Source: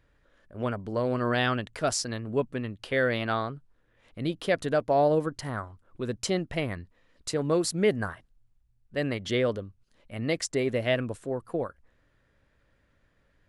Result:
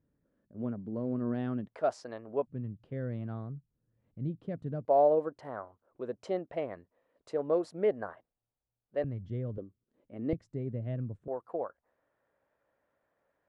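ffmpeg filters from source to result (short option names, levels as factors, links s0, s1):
-af "asetnsamples=n=441:p=0,asendcmd='1.68 bandpass f 660;2.47 bandpass f 140;4.85 bandpass f 600;9.04 bandpass f 110;9.58 bandpass f 330;10.33 bandpass f 130;11.28 bandpass f 730',bandpass=f=210:t=q:w=1.6:csg=0"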